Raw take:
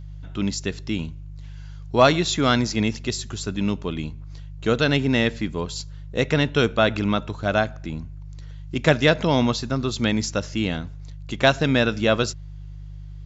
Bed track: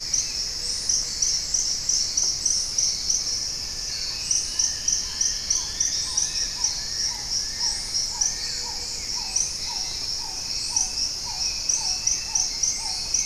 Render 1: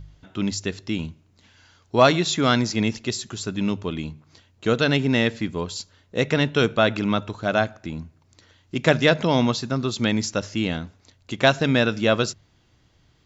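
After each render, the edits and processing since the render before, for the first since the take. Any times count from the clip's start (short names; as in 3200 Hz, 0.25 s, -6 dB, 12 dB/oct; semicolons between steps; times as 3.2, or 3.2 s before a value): de-hum 50 Hz, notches 3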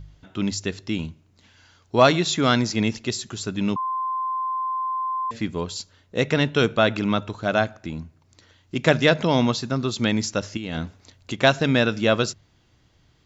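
3.76–5.31 bleep 1040 Hz -23 dBFS; 10.57–11.33 negative-ratio compressor -29 dBFS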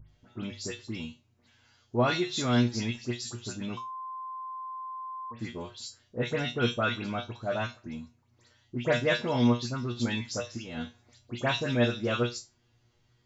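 resonator 120 Hz, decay 0.23 s, harmonics all, mix 90%; dispersion highs, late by 96 ms, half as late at 2900 Hz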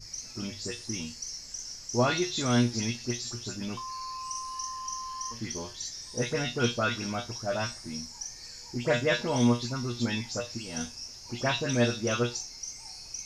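add bed track -16 dB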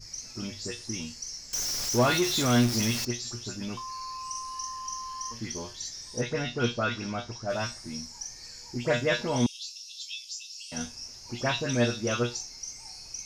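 1.53–3.05 zero-crossing step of -27.5 dBFS; 6.21–7.5 air absorption 81 m; 9.46–10.72 steep high-pass 2700 Hz 72 dB/oct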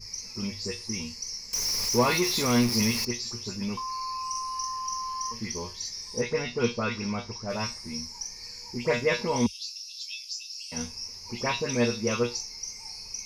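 ripple EQ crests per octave 0.86, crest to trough 10 dB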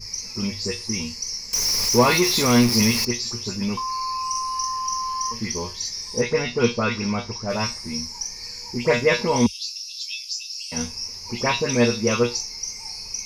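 gain +6.5 dB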